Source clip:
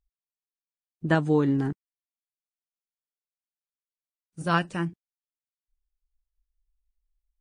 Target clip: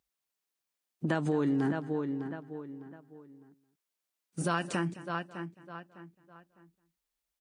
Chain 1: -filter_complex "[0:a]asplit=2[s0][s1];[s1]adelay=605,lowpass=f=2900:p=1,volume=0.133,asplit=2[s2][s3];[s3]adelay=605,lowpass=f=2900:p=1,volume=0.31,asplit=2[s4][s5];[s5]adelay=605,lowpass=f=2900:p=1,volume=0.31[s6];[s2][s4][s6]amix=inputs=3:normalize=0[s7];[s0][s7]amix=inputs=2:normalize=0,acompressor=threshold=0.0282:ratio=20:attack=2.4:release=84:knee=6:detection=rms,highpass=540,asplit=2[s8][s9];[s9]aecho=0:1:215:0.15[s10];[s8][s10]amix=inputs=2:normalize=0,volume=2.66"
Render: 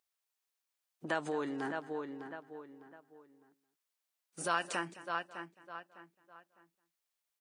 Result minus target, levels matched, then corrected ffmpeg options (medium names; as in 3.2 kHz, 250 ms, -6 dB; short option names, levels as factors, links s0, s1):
250 Hz band -5.5 dB
-filter_complex "[0:a]asplit=2[s0][s1];[s1]adelay=605,lowpass=f=2900:p=1,volume=0.133,asplit=2[s2][s3];[s3]adelay=605,lowpass=f=2900:p=1,volume=0.31,asplit=2[s4][s5];[s5]adelay=605,lowpass=f=2900:p=1,volume=0.31[s6];[s2][s4][s6]amix=inputs=3:normalize=0[s7];[s0][s7]amix=inputs=2:normalize=0,acompressor=threshold=0.0282:ratio=20:attack=2.4:release=84:knee=6:detection=rms,highpass=180,asplit=2[s8][s9];[s9]aecho=0:1:215:0.15[s10];[s8][s10]amix=inputs=2:normalize=0,volume=2.66"